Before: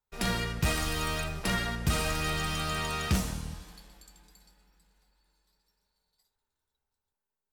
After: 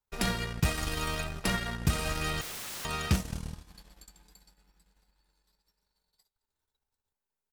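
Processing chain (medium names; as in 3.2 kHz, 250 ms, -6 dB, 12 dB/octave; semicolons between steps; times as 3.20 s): transient shaper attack +6 dB, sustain -12 dB; in parallel at -0.5 dB: peak limiter -20.5 dBFS, peak gain reduction 8.5 dB; 2.41–2.85 s: on the sum: integer overflow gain 29 dB; delay 216 ms -23 dB; trim -6.5 dB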